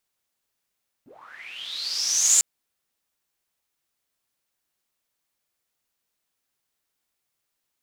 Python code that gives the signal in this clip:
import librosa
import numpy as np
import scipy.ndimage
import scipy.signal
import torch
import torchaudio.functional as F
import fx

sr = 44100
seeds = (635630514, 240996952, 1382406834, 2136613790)

y = fx.riser_noise(sr, seeds[0], length_s=1.35, colour='pink', kind='bandpass', start_hz=190.0, end_hz=7400.0, q=11.0, swell_db=36.5, law='linear')